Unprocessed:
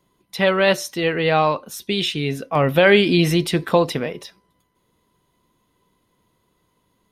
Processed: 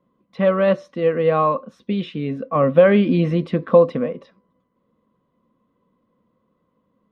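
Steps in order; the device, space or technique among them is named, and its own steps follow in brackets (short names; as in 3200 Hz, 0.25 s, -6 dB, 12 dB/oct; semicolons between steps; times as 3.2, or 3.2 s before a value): inside a cardboard box (LPF 2600 Hz 12 dB/oct; small resonant body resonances 230/510/1100 Hz, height 16 dB, ringing for 30 ms); gain -10 dB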